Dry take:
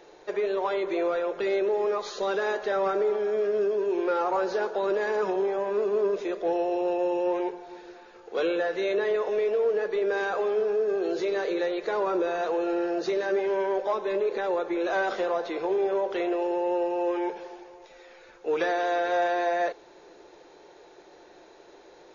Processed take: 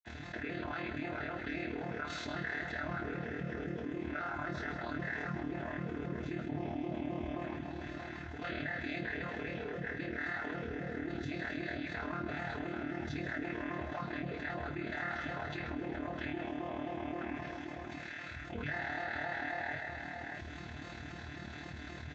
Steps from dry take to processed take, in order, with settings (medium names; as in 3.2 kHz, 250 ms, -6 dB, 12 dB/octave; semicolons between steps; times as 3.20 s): vocoder on a broken chord major triad, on A#2, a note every 88 ms; 6.21–7.19 s: peaking EQ 220 Hz +8.5 dB 1.4 oct; multi-tap echo 143/628 ms -12.5/-17.5 dB; AM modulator 38 Hz, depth 85%; bass shelf 490 Hz -11 dB; reverberation, pre-delay 46 ms; level flattener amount 70%; trim +18 dB